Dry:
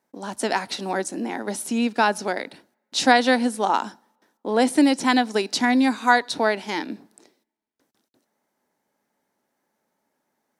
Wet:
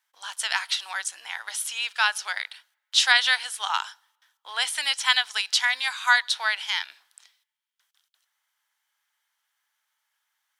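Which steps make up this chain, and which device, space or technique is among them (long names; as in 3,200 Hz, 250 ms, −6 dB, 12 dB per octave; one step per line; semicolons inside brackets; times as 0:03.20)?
headphones lying on a table (high-pass filter 1,200 Hz 24 dB per octave; parametric band 3,200 Hz +10 dB 0.31 octaves)
level +2 dB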